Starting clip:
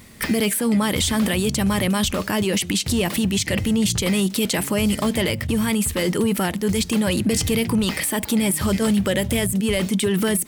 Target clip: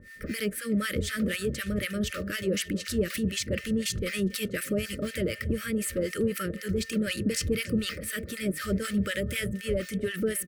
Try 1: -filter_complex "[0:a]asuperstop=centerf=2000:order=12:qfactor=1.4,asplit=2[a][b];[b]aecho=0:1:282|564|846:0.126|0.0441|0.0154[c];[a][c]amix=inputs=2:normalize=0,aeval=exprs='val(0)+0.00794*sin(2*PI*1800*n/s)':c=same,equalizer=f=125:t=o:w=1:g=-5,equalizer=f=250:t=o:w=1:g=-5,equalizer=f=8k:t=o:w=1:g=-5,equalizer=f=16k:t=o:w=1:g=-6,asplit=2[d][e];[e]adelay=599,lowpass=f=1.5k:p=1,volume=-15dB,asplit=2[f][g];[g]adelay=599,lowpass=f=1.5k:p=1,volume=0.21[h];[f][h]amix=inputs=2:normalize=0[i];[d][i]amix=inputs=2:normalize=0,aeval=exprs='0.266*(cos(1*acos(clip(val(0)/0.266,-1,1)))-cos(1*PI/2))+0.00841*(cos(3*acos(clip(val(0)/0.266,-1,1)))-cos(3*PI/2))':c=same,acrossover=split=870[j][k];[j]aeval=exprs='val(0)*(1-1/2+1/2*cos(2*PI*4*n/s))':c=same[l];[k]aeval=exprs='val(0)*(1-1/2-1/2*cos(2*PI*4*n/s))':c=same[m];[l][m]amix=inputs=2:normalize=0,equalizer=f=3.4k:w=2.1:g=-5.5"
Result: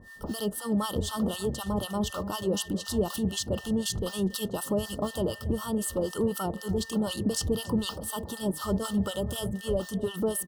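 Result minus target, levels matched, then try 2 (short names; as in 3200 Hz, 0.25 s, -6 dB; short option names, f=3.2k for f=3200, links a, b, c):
2000 Hz band -9.0 dB
-filter_complex "[0:a]asuperstop=centerf=860:order=12:qfactor=1.4,asplit=2[a][b];[b]aecho=0:1:282|564|846:0.126|0.0441|0.0154[c];[a][c]amix=inputs=2:normalize=0,aeval=exprs='val(0)+0.00794*sin(2*PI*1800*n/s)':c=same,equalizer=f=125:t=o:w=1:g=-5,equalizer=f=250:t=o:w=1:g=-5,equalizer=f=8k:t=o:w=1:g=-5,equalizer=f=16k:t=o:w=1:g=-6,asplit=2[d][e];[e]adelay=599,lowpass=f=1.5k:p=1,volume=-15dB,asplit=2[f][g];[g]adelay=599,lowpass=f=1.5k:p=1,volume=0.21[h];[f][h]amix=inputs=2:normalize=0[i];[d][i]amix=inputs=2:normalize=0,aeval=exprs='0.266*(cos(1*acos(clip(val(0)/0.266,-1,1)))-cos(1*PI/2))+0.00841*(cos(3*acos(clip(val(0)/0.266,-1,1)))-cos(3*PI/2))':c=same,acrossover=split=870[j][k];[j]aeval=exprs='val(0)*(1-1/2+1/2*cos(2*PI*4*n/s))':c=same[l];[k]aeval=exprs='val(0)*(1-1/2-1/2*cos(2*PI*4*n/s))':c=same[m];[l][m]amix=inputs=2:normalize=0,equalizer=f=3.4k:w=2.1:g=-5.5"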